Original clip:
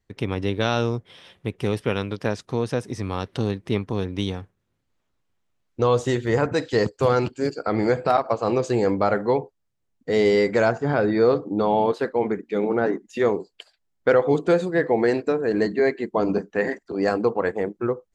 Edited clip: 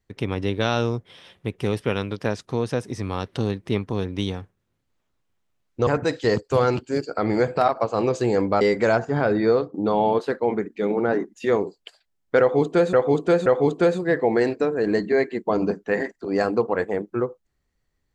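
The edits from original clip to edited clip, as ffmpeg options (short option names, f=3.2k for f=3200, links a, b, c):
-filter_complex "[0:a]asplit=6[a][b][c][d][e][f];[a]atrim=end=5.872[g];[b]atrim=start=6.358:end=9.102[h];[c]atrim=start=10.338:end=11.47,asetpts=PTS-STARTPTS,afade=t=out:st=0.882:d=0.25:silence=0.211349[i];[d]atrim=start=11.47:end=14.662,asetpts=PTS-STARTPTS,afade=t=in:d=0.004:c=hsin:silence=0.211349[j];[e]atrim=start=14.128:end=14.662[k];[f]atrim=start=14.128[l];[g][h]acrossfade=d=0.004:c1=hsin:c2=hsin[m];[i][j]concat=n=2:v=0:a=1[n];[m][n]acrossfade=d=0.004:c1=hsin:c2=hsin[o];[o][k]acrossfade=d=0.004:c1=hsin:c2=hsin[p];[p][l]acrossfade=d=0.004:c1=hsin:c2=hsin"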